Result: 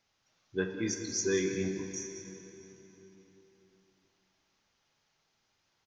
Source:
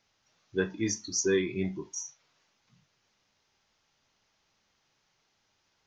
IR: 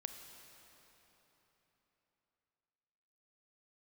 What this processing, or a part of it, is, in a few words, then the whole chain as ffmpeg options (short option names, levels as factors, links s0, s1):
cave: -filter_complex "[0:a]aecho=1:1:189:0.224[s0];[1:a]atrim=start_sample=2205[s1];[s0][s1]afir=irnorm=-1:irlink=0"